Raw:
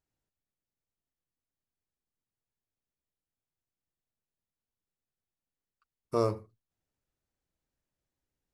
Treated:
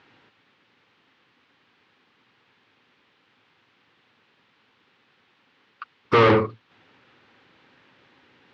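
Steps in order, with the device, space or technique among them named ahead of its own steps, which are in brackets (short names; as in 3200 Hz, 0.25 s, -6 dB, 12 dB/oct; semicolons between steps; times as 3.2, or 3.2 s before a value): overdrive pedal into a guitar cabinet (overdrive pedal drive 38 dB, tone 5800 Hz, clips at -15.5 dBFS; speaker cabinet 99–3500 Hz, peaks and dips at 110 Hz +5 dB, 250 Hz +4 dB, 650 Hz -9 dB); gain +7.5 dB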